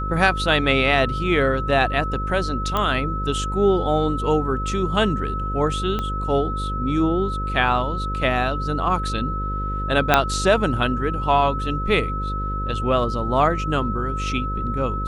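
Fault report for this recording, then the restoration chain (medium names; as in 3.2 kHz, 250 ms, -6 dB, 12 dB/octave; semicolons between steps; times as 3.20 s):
buzz 50 Hz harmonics 11 -27 dBFS
whine 1.3 kHz -27 dBFS
2.77 s: pop -10 dBFS
5.99 s: pop -13 dBFS
10.14 s: pop 0 dBFS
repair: de-click; band-stop 1.3 kHz, Q 30; de-hum 50 Hz, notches 11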